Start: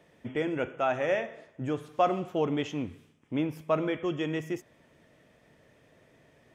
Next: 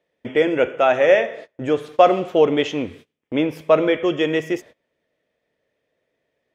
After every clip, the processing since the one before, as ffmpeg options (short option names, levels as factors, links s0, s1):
-af "agate=range=0.0631:threshold=0.00355:ratio=16:detection=peak,equalizer=f=125:t=o:w=1:g=-4,equalizer=f=500:t=o:w=1:g=9,equalizer=f=2000:t=o:w=1:g=5,equalizer=f=4000:t=o:w=1:g=7,volume=2"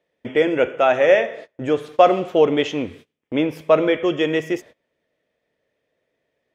-af anull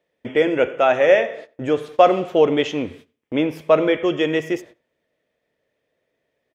-filter_complex "[0:a]asplit=2[s0][s1];[s1]adelay=91,lowpass=f=2600:p=1,volume=0.0841,asplit=2[s2][s3];[s3]adelay=91,lowpass=f=2600:p=1,volume=0.24[s4];[s0][s2][s4]amix=inputs=3:normalize=0"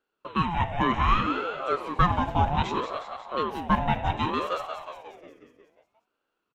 -filter_complex "[0:a]asplit=9[s0][s1][s2][s3][s4][s5][s6][s7][s8];[s1]adelay=180,afreqshift=-59,volume=0.447[s9];[s2]adelay=360,afreqshift=-118,volume=0.272[s10];[s3]adelay=540,afreqshift=-177,volume=0.166[s11];[s4]adelay=720,afreqshift=-236,volume=0.101[s12];[s5]adelay=900,afreqshift=-295,volume=0.0617[s13];[s6]adelay=1080,afreqshift=-354,volume=0.0376[s14];[s7]adelay=1260,afreqshift=-413,volume=0.0229[s15];[s8]adelay=1440,afreqshift=-472,volume=0.014[s16];[s0][s9][s10][s11][s12][s13][s14][s15][s16]amix=inputs=9:normalize=0,aeval=exprs='val(0)*sin(2*PI*650*n/s+650*0.45/0.64*sin(2*PI*0.64*n/s))':c=same,volume=0.531"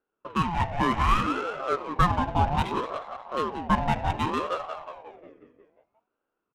-af "adynamicsmooth=sensitivity=5.5:basefreq=1900"